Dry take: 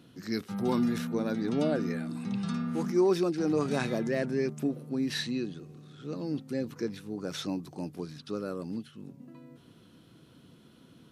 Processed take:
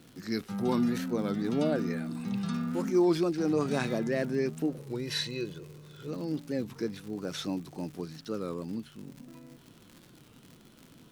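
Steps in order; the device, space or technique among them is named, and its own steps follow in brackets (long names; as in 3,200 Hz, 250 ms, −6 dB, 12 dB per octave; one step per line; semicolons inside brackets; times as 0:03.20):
0:04.80–0:06.08: comb filter 2 ms, depth 73%
warped LP (wow of a warped record 33 1/3 rpm, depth 160 cents; surface crackle 120 per second −41 dBFS; pink noise bed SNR 35 dB)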